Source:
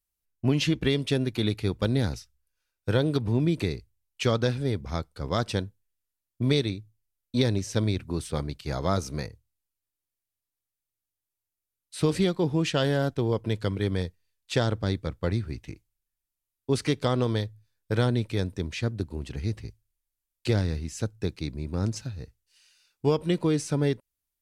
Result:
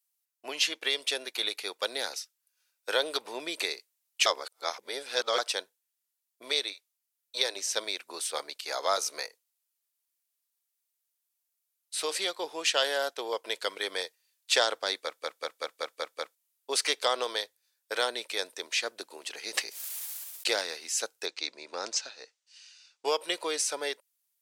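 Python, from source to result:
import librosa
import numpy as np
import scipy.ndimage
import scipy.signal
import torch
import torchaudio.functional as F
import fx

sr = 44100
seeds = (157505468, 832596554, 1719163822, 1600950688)

y = fx.highpass(x, sr, hz=fx.line((6.72, 640.0), (7.54, 270.0)), slope=24, at=(6.72, 7.54), fade=0.02)
y = fx.sustainer(y, sr, db_per_s=33.0, at=(19.46, 20.61))
y = fx.lowpass(y, sr, hz=7000.0, slope=24, at=(21.26, 23.05))
y = fx.edit(y, sr, fx.reverse_span(start_s=4.26, length_s=1.12),
    fx.stutter_over(start_s=15.02, slice_s=0.19, count=7), tone=tone)
y = scipy.signal.sosfilt(scipy.signal.butter(4, 530.0, 'highpass', fs=sr, output='sos'), y)
y = fx.high_shelf(y, sr, hz=2500.0, db=9.0)
y = fx.rider(y, sr, range_db=3, speed_s=2.0)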